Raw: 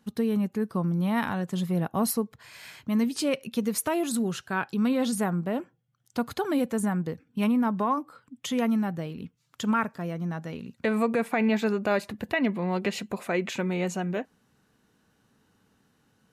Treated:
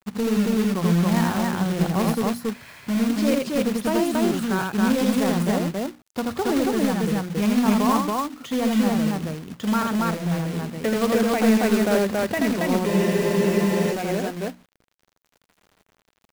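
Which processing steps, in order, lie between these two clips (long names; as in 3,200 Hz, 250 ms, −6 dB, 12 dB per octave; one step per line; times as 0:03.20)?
in parallel at −5 dB: soft clipping −24.5 dBFS, distortion −12 dB
on the sum: low-pass filter 1,500 Hz 6 dB per octave
mains-hum notches 60/120/180/240/300 Hz
log-companded quantiser 4 bits
on a send: loudspeakers that aren't time-aligned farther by 28 metres −3 dB, 95 metres −1 dB
on the sum: frozen spectrum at 0:12.89, 1.04 s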